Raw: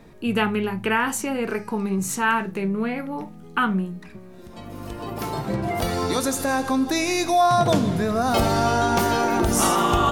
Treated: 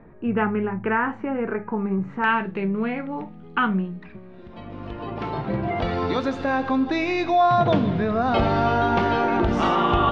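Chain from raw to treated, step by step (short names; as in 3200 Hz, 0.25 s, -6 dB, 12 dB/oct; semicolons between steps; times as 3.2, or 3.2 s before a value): LPF 1900 Hz 24 dB/oct, from 2.24 s 3400 Hz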